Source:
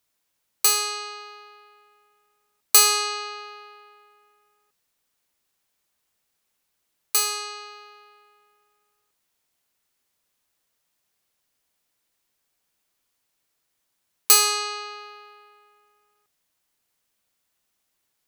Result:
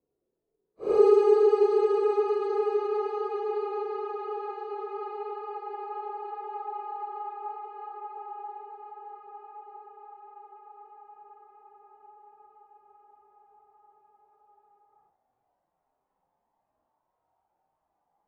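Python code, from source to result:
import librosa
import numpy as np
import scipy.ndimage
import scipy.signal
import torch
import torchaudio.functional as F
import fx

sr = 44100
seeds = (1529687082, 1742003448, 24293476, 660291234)

y = fx.filter_sweep_lowpass(x, sr, from_hz=170.0, to_hz=820.0, start_s=12.87, end_s=15.15, q=5.4)
y = fx.paulstretch(y, sr, seeds[0], factor=7.2, window_s=0.05, from_s=14.17)
y = F.gain(torch.from_numpy(y), 2.5).numpy()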